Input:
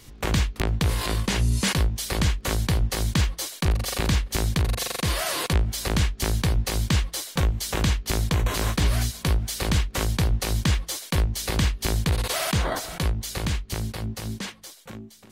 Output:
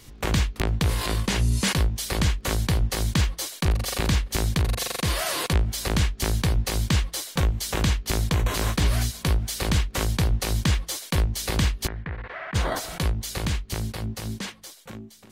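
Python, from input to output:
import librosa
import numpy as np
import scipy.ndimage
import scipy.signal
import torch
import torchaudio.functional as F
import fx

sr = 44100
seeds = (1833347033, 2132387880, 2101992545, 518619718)

y = fx.ladder_lowpass(x, sr, hz=2100.0, resonance_pct=55, at=(11.86, 12.54), fade=0.02)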